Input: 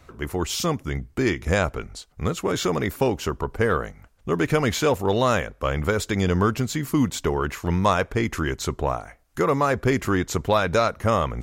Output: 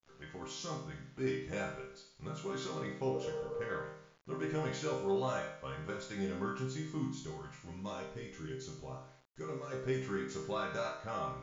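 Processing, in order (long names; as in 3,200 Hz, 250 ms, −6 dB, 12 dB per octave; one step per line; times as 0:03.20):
0:03.16–0:03.61: healed spectral selection 380–1,300 Hz after
0:07.04–0:09.72: parametric band 1,100 Hz −9 dB 2.3 octaves
resonators tuned to a chord C3 minor, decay 0.68 s
bit reduction 11 bits
linear-phase brick-wall low-pass 7,300 Hz
level +2.5 dB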